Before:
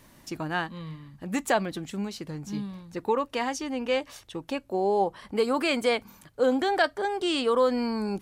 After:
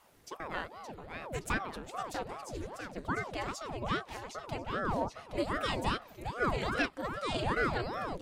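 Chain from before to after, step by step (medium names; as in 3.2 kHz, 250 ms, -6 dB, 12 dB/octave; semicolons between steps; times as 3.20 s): 2.29–2.70 s: peaking EQ 8.8 kHz +12 dB 0.73 oct; ever faster or slower copies 553 ms, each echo -1 st, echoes 3, each echo -6 dB; ring modulator with a swept carrier 550 Hz, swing 80%, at 2.5 Hz; trim -6 dB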